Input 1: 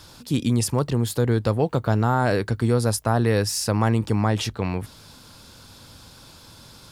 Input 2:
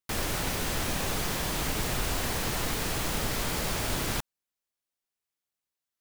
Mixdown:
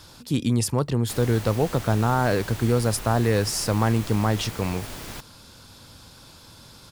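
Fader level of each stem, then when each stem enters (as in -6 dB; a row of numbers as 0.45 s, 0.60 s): -1.0 dB, -7.0 dB; 0.00 s, 1.00 s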